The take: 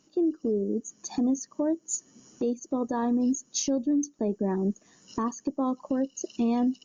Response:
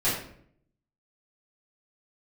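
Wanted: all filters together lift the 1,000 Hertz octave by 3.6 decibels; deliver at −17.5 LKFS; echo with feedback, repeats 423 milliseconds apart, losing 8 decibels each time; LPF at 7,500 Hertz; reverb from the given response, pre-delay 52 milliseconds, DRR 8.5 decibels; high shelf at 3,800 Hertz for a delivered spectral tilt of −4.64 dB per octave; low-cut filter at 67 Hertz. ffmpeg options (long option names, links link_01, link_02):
-filter_complex "[0:a]highpass=67,lowpass=7500,equalizer=frequency=1000:width_type=o:gain=4,highshelf=frequency=3800:gain=6.5,aecho=1:1:423|846|1269|1692|2115:0.398|0.159|0.0637|0.0255|0.0102,asplit=2[link_01][link_02];[1:a]atrim=start_sample=2205,adelay=52[link_03];[link_02][link_03]afir=irnorm=-1:irlink=0,volume=-20.5dB[link_04];[link_01][link_04]amix=inputs=2:normalize=0,volume=9.5dB"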